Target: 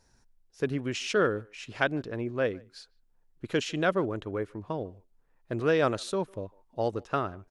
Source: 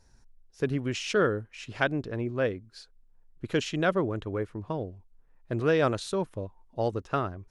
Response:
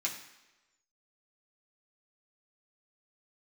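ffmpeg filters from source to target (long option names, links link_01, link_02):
-filter_complex "[0:a]lowshelf=frequency=110:gain=-8.5,asplit=2[link_01][link_02];[link_02]adelay=150,highpass=300,lowpass=3400,asoftclip=type=hard:threshold=-18.5dB,volume=-26dB[link_03];[link_01][link_03]amix=inputs=2:normalize=0"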